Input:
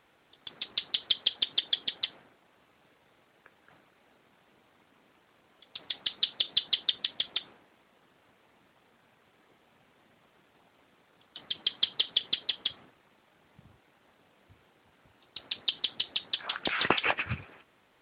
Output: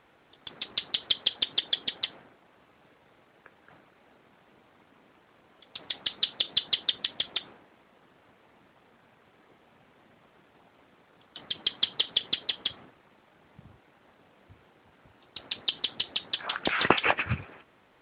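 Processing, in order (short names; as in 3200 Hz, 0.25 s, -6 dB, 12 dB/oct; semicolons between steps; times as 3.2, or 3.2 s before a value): high shelf 3700 Hz -9.5 dB; gain +5 dB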